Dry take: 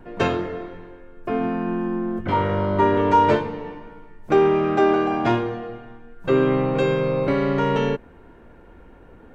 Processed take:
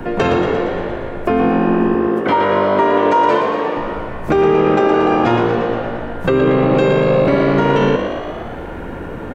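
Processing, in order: 1.94–3.77 s: high-pass 290 Hz 12 dB/octave; in parallel at +2 dB: compression, threshold -31 dBFS, peak gain reduction 17.5 dB; on the sum: peak limiter -11.5 dBFS, peak gain reduction 7 dB; on a send: frequency-shifting echo 116 ms, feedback 58%, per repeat +54 Hz, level -7 dB; on the sum: three bands compressed up and down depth 40%; trim +5.5 dB

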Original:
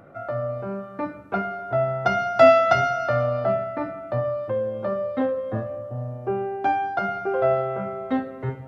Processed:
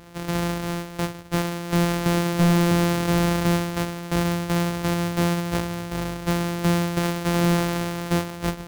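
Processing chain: sorted samples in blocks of 256 samples; hard clipper -18 dBFS, distortion -8 dB; trim +2.5 dB

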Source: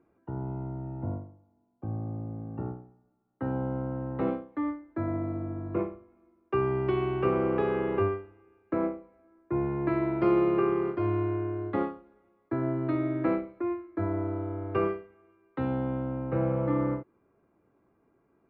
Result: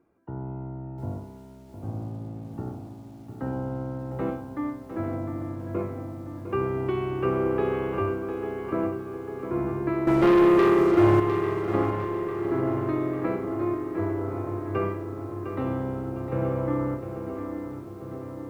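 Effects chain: 10.07–11.20 s: waveshaping leveller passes 3; filtered feedback delay 847 ms, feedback 75%, low-pass 2.4 kHz, level -9 dB; bit-crushed delay 705 ms, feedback 35%, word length 9-bit, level -9 dB

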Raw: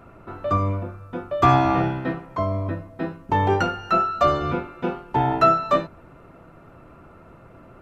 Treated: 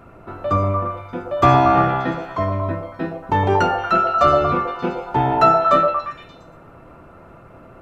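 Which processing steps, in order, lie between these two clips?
repeats whose band climbs or falls 116 ms, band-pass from 630 Hz, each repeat 0.7 oct, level -1 dB; trim +2.5 dB

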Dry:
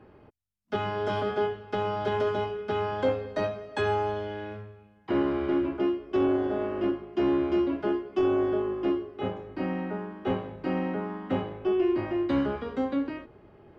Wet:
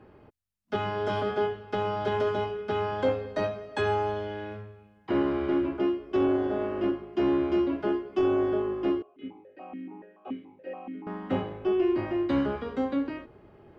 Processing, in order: 9.02–11.07 s: stepped vowel filter 7 Hz

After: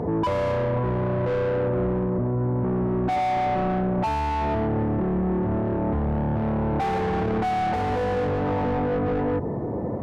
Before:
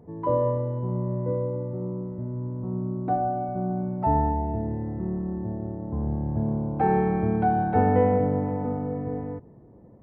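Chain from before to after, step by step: overdrive pedal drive 36 dB, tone 1.1 kHz, clips at -8.5 dBFS; peaking EQ 75 Hz +10 dB 1.4 oct; peak limiter -20 dBFS, peak gain reduction 14 dB; trim +1.5 dB

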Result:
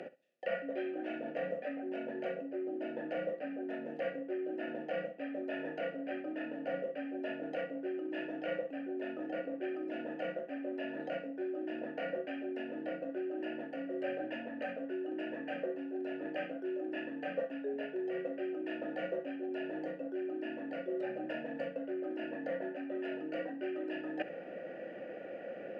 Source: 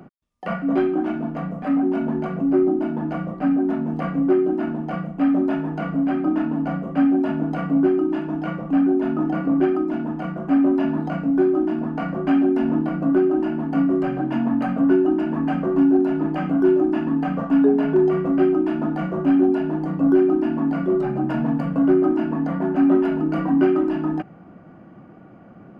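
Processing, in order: high-pass 290 Hz 6 dB/octave; treble shelf 2.7 kHz +10 dB; reverse; compression 16:1, threshold -36 dBFS, peak gain reduction 23 dB; reverse; vowel filter e; flutter echo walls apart 11.4 m, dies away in 0.23 s; on a send at -20.5 dB: reverberation, pre-delay 3 ms; on the sum: trim +16 dB

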